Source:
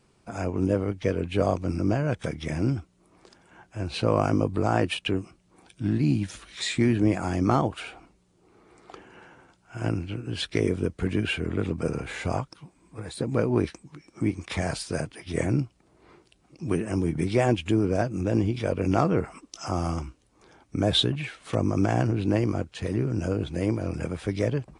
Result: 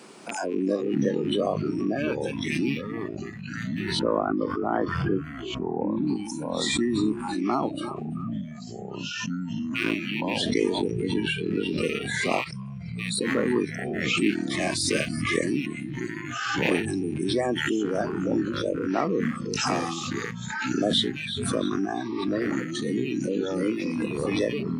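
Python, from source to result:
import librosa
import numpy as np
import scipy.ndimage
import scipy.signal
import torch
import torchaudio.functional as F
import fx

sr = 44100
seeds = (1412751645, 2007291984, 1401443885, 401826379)

y = fx.rattle_buzz(x, sr, strikes_db=-37.0, level_db=-19.0)
y = fx.echo_feedback(y, sr, ms=338, feedback_pct=53, wet_db=-12.5)
y = fx.rider(y, sr, range_db=4, speed_s=0.5)
y = fx.lowpass(y, sr, hz=1800.0, slope=24, at=(3.99, 6.07))
y = fx.noise_reduce_blind(y, sr, reduce_db=26)
y = scipy.signal.sosfilt(scipy.signal.butter(4, 210.0, 'highpass', fs=sr, output='sos'), y)
y = fx.echo_pitch(y, sr, ms=216, semitones=-5, count=3, db_per_echo=-6.0)
y = fx.pre_swell(y, sr, db_per_s=29.0)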